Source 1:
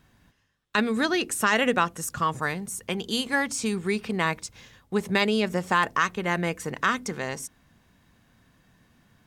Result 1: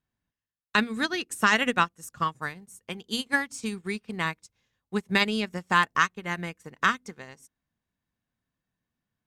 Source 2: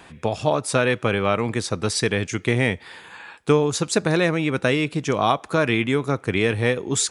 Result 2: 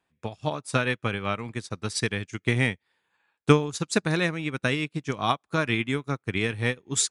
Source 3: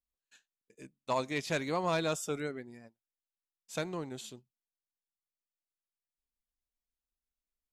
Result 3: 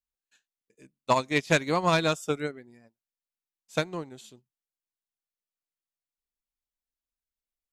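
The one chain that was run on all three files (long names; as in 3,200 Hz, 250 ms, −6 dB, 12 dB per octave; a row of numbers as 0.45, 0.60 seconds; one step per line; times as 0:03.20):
dynamic equaliser 540 Hz, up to −7 dB, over −34 dBFS, Q 0.92
expander for the loud parts 2.5 to 1, over −41 dBFS
loudness normalisation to −27 LKFS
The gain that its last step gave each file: +4.5, +5.0, +12.5 decibels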